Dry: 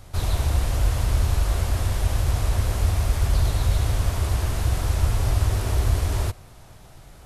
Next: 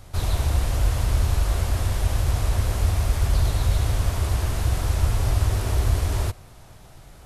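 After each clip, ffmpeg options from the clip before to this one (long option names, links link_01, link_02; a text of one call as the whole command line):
ffmpeg -i in.wav -af anull out.wav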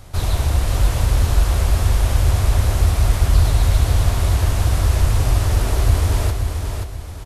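ffmpeg -i in.wav -af "aecho=1:1:530|1060|1590|2120:0.531|0.186|0.065|0.0228,volume=4dB" out.wav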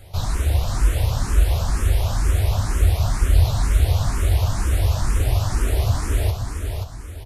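ffmpeg -i in.wav -filter_complex "[0:a]asplit=2[link_01][link_02];[link_02]afreqshift=2.1[link_03];[link_01][link_03]amix=inputs=2:normalize=1" out.wav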